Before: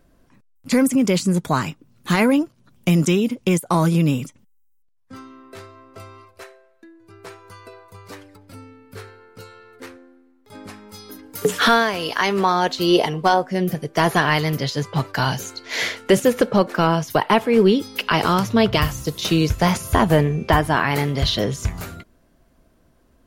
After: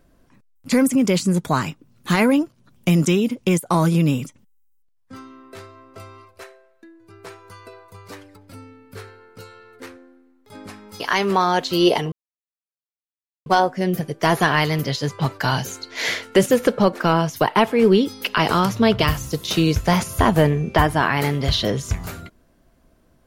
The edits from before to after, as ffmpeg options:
ffmpeg -i in.wav -filter_complex "[0:a]asplit=3[link_01][link_02][link_03];[link_01]atrim=end=11.002[link_04];[link_02]atrim=start=12.078:end=13.2,asetpts=PTS-STARTPTS,afade=type=out:start_time=1.118:duration=0.004:curve=hsin,apad=pad_dur=1.34[link_05];[link_03]atrim=start=13.2,asetpts=PTS-STARTPTS,afade=type=in:duration=0.004:curve=hsin[link_06];[link_05][link_06]concat=n=2:v=0:a=1[link_07];[link_04][link_07]acrossfade=duration=0.004:curve1=hsin:curve2=hsin" out.wav

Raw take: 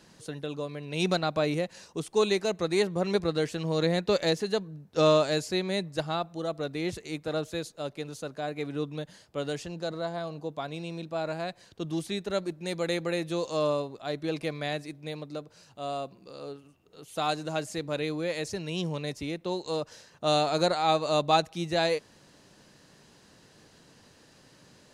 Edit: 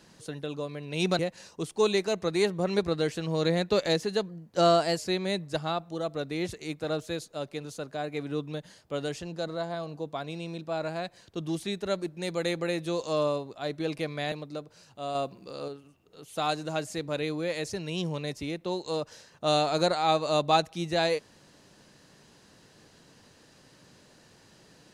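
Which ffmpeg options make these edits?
ffmpeg -i in.wav -filter_complex "[0:a]asplit=7[link_01][link_02][link_03][link_04][link_05][link_06][link_07];[link_01]atrim=end=1.192[link_08];[link_02]atrim=start=1.558:end=4.664[link_09];[link_03]atrim=start=4.66:end=5.42,asetpts=PTS-STARTPTS,asetrate=48510,aresample=44100,atrim=end_sample=30469,asetpts=PTS-STARTPTS[link_10];[link_04]atrim=start=5.416:end=14.762[link_11];[link_05]atrim=start=15.118:end=15.952[link_12];[link_06]atrim=start=15.948:end=16.482,asetpts=PTS-STARTPTS,volume=4.5dB[link_13];[link_07]atrim=start=16.478[link_14];[link_08][link_09]acrossfade=duration=0.004:curve1=hsin:curve2=hsin[link_15];[link_15][link_10]acrossfade=duration=0.004:curve1=hsin:curve2=hsin[link_16];[link_16][link_11]acrossfade=duration=0.004:curve1=hsin:curve2=hsin[link_17];[link_17][link_12]acrossfade=duration=0.004:curve1=hsin:curve2=hsin[link_18];[link_18][link_13]acrossfade=duration=0.004:curve1=hsin:curve2=hsin[link_19];[link_19][link_14]acrossfade=duration=0.004:curve1=hsin:curve2=hsin" out.wav

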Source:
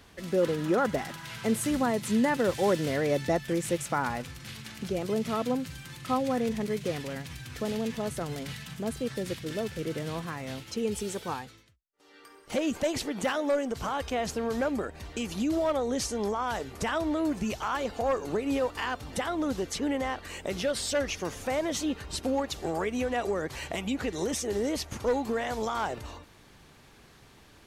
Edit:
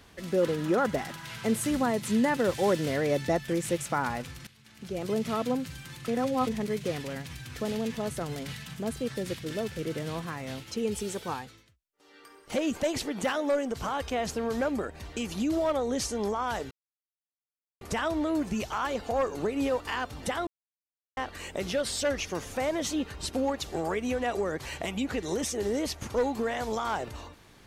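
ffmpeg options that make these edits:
ffmpeg -i in.wav -filter_complex "[0:a]asplit=7[link_01][link_02][link_03][link_04][link_05][link_06][link_07];[link_01]atrim=end=4.47,asetpts=PTS-STARTPTS,afade=type=out:start_time=4.466:duration=0.004:curve=hsin:silence=0.133352[link_08];[link_02]atrim=start=4.47:end=6.082,asetpts=PTS-STARTPTS,afade=type=in:duration=0.6:curve=qua:silence=0.133352[link_09];[link_03]atrim=start=6.078:end=6.472,asetpts=PTS-STARTPTS,areverse[link_10];[link_04]atrim=start=6.468:end=16.71,asetpts=PTS-STARTPTS,afade=type=out:start_time=10.238:duration=0.004:curve=hsin,apad=pad_dur=1.1[link_11];[link_05]atrim=start=16.71:end=19.37,asetpts=PTS-STARTPTS,afade=type=in:duration=0.004:curve=hsin,afade=type=out:start_time=2.656:duration=0.004:curve=hsin[link_12];[link_06]atrim=start=19.37:end=20.07,asetpts=PTS-STARTPTS,volume=0[link_13];[link_07]atrim=start=20.07,asetpts=PTS-STARTPTS,afade=type=in:duration=0.004:curve=hsin[link_14];[link_08][link_09]concat=n=2:v=0:a=1[link_15];[link_15][link_10]acrossfade=duration=0.004:curve1=hsin:curve2=hsin[link_16];[link_11][link_12][link_13][link_14]concat=n=4:v=0:a=1[link_17];[link_16][link_17]acrossfade=duration=0.004:curve1=hsin:curve2=hsin" out.wav

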